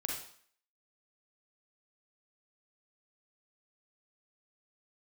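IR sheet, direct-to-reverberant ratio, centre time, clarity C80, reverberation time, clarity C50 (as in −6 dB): −1.0 dB, 43 ms, 7.0 dB, 0.55 s, 2.0 dB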